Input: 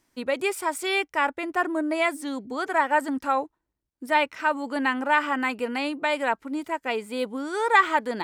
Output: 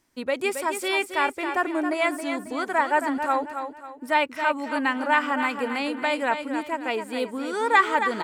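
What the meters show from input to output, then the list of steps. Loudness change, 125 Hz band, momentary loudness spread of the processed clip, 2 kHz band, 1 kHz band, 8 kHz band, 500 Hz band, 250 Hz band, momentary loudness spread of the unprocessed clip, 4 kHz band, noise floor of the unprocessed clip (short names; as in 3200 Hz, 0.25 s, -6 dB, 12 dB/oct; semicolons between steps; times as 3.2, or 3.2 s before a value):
+0.5 dB, n/a, 8 LU, +0.5 dB, +0.5 dB, +0.5 dB, +0.5 dB, +0.5 dB, 8 LU, +0.5 dB, -80 dBFS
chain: feedback echo 0.272 s, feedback 36%, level -8 dB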